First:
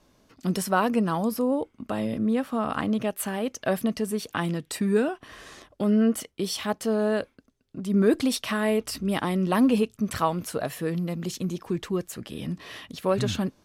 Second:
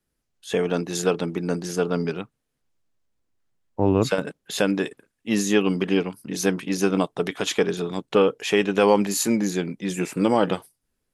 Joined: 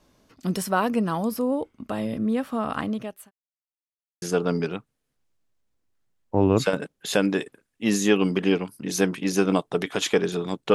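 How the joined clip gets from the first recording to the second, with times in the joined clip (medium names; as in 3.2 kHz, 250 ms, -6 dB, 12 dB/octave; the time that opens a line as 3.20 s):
first
2.78–3.31 s: fade out linear
3.31–4.22 s: mute
4.22 s: go over to second from 1.67 s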